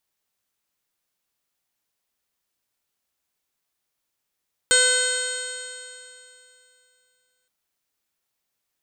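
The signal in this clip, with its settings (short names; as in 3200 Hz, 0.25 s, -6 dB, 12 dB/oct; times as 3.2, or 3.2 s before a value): stretched partials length 2.77 s, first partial 501 Hz, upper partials -14.5/4/-6.5/-13/-1/-3/-0.5/-14/-12.5/-15/0.5/-9/5.5 dB, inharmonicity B 0.0022, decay 2.77 s, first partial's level -23 dB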